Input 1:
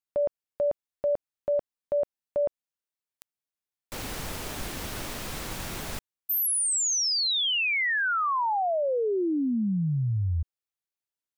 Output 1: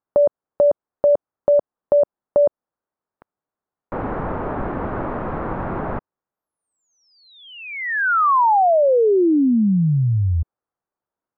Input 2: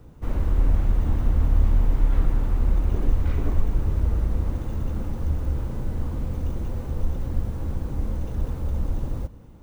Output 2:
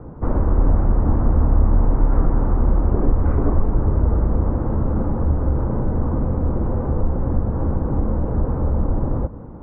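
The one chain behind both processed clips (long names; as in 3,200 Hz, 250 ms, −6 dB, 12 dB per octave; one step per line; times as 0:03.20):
low-pass filter 1,300 Hz 24 dB per octave
low-shelf EQ 120 Hz −8.5 dB
in parallel at +2 dB: downward compressor, threshold −33 dBFS
on the sum: level +8 dB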